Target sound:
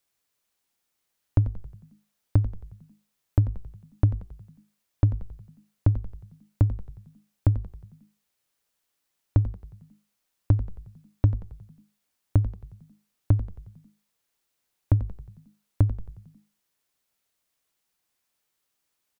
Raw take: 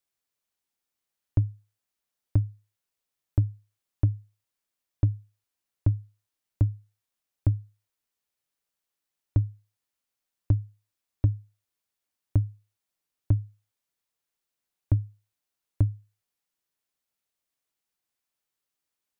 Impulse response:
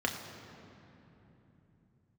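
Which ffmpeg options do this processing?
-filter_complex "[0:a]bandreject=frequency=386.6:width_type=h:width=4,bandreject=frequency=773.2:width_type=h:width=4,bandreject=frequency=1159.8:width_type=h:width=4,asplit=2[link_01][link_02];[link_02]acompressor=threshold=-31dB:ratio=6,volume=2dB[link_03];[link_01][link_03]amix=inputs=2:normalize=0,asplit=7[link_04][link_05][link_06][link_07][link_08][link_09][link_10];[link_05]adelay=90,afreqshift=-52,volume=-12.5dB[link_11];[link_06]adelay=180,afreqshift=-104,volume=-17.9dB[link_12];[link_07]adelay=270,afreqshift=-156,volume=-23.2dB[link_13];[link_08]adelay=360,afreqshift=-208,volume=-28.6dB[link_14];[link_09]adelay=450,afreqshift=-260,volume=-33.9dB[link_15];[link_10]adelay=540,afreqshift=-312,volume=-39.3dB[link_16];[link_04][link_11][link_12][link_13][link_14][link_15][link_16]amix=inputs=7:normalize=0"

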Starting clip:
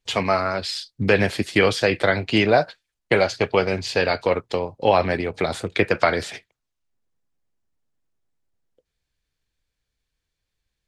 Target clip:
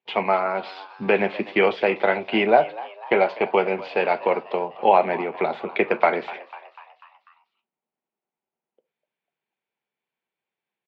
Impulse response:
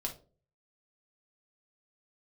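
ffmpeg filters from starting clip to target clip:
-filter_complex "[0:a]highpass=frequency=220:width=0.5412,highpass=frequency=220:width=1.3066,equalizer=frequency=280:width_type=q:width=4:gain=-9,equalizer=frequency=530:width_type=q:width=4:gain=-4,equalizer=frequency=850:width_type=q:width=4:gain=5,equalizer=frequency=1200:width_type=q:width=4:gain=-4,equalizer=frequency=1700:width_type=q:width=4:gain=-8,lowpass=frequency=2600:width=0.5412,lowpass=frequency=2600:width=1.3066,asplit=6[link_01][link_02][link_03][link_04][link_05][link_06];[link_02]adelay=247,afreqshift=100,volume=-18dB[link_07];[link_03]adelay=494,afreqshift=200,volume=-23dB[link_08];[link_04]adelay=741,afreqshift=300,volume=-28.1dB[link_09];[link_05]adelay=988,afreqshift=400,volume=-33.1dB[link_10];[link_06]adelay=1235,afreqshift=500,volume=-38.1dB[link_11];[link_01][link_07][link_08][link_09][link_10][link_11]amix=inputs=6:normalize=0,asplit=2[link_12][link_13];[1:a]atrim=start_sample=2205,atrim=end_sample=6174[link_14];[link_13][link_14]afir=irnorm=-1:irlink=0,volume=-11.5dB[link_15];[link_12][link_15]amix=inputs=2:normalize=0"

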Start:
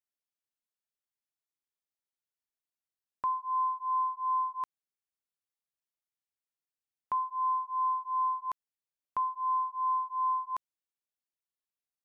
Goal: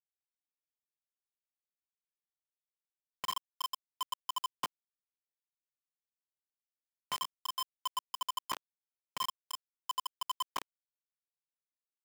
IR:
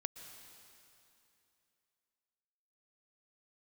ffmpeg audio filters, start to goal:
-filter_complex "[0:a]acrossover=split=300[link_01][link_02];[link_02]acompressor=mode=upward:threshold=-37dB:ratio=2.5[link_03];[link_01][link_03]amix=inputs=2:normalize=0,bandreject=frequency=50:width_type=h:width=6,bandreject=frequency=100:width_type=h:width=6,bandreject=frequency=150:width_type=h:width=6,bandreject=frequency=200:width_type=h:width=6,bandreject=frequency=250:width_type=h:width=6,areverse,acompressor=threshold=-41dB:ratio=10,areverse,flanger=delay=6.8:depth=8:regen=-56:speed=0.52:shape=sinusoidal,equalizer=frequency=190:width_type=o:width=2:gain=14.5,aecho=1:1:20|51:0.501|0.316,acrusher=bits=6:mix=0:aa=0.000001,bass=frequency=250:gain=-7,treble=frequency=4000:gain=-2,volume=9.5dB"

